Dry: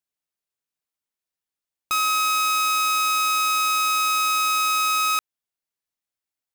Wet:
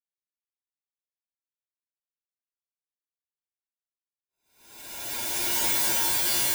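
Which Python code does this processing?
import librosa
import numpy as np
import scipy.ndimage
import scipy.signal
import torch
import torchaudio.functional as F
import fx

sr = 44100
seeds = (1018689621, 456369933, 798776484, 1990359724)

p1 = fx.spec_gate(x, sr, threshold_db=-25, keep='weak')
p2 = fx.paulstretch(p1, sr, seeds[0], factor=8.0, window_s=0.5, from_s=1.11)
p3 = fx.over_compress(p2, sr, threshold_db=-44.0, ratio=-0.5)
p4 = p2 + F.gain(torch.from_numpy(p3), 1.5).numpy()
p5 = np.clip(p4, -10.0 ** (-27.0 / 20.0), 10.0 ** (-27.0 / 20.0))
p6 = fx.leveller(p5, sr, passes=1)
p7 = p6 + fx.echo_single(p6, sr, ms=253, db=-5.0, dry=0)
y = F.gain(torch.from_numpy(p7), 8.5).numpy()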